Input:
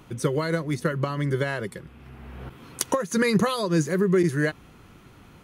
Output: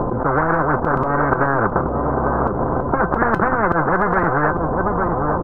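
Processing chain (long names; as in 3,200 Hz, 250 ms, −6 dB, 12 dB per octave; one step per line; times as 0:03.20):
running median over 41 samples
Butterworth low-pass 1,300 Hz 48 dB per octave
low-shelf EQ 94 Hz +6.5 dB
0:00.97–0:01.46: comb filter 3.2 ms, depth 53%
volume swells 112 ms
tuned comb filter 510 Hz, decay 0.16 s, harmonics all, mix 70%
on a send: repeating echo 851 ms, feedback 33%, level −17 dB
on the sum: boost into a limiter +26 dB
every bin compressed towards the loudest bin 10 to 1
level −1 dB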